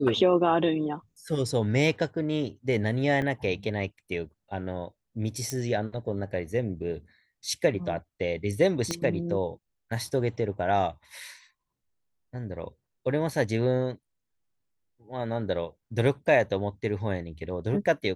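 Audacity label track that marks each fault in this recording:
3.220000	3.220000	dropout 2.8 ms
5.500000	5.500000	pop -17 dBFS
8.910000	8.910000	pop -14 dBFS

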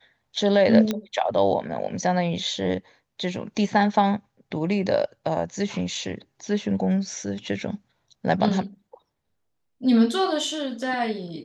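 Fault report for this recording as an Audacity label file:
0.910000	0.910000	pop -11 dBFS

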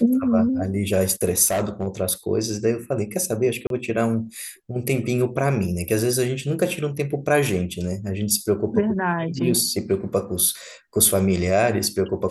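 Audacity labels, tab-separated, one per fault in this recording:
1.460000	1.880000	clipped -18 dBFS
3.670000	3.700000	dropout 32 ms

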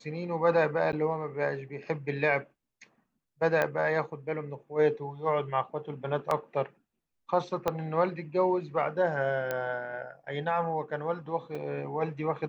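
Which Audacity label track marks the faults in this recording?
0.920000	0.930000	dropout 9.7 ms
3.620000	3.620000	pop -15 dBFS
6.310000	6.310000	dropout 2.4 ms
7.680000	7.680000	pop -14 dBFS
9.510000	9.510000	pop -17 dBFS
11.550000	11.550000	dropout 3.3 ms

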